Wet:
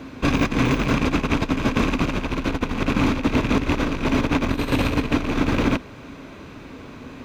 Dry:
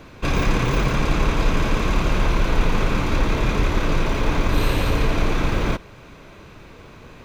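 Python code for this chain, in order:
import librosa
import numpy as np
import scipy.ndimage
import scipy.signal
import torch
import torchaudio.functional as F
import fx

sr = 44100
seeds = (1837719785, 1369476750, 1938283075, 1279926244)

y = fx.rattle_buzz(x, sr, strikes_db=-19.0, level_db=-15.0)
y = fx.high_shelf(y, sr, hz=8600.0, db=-4.5)
y = fx.over_compress(y, sr, threshold_db=-20.0, ratio=-0.5)
y = fx.highpass(y, sr, hz=52.0, slope=6)
y = fx.peak_eq(y, sr, hz=260.0, db=13.0, octaves=0.3)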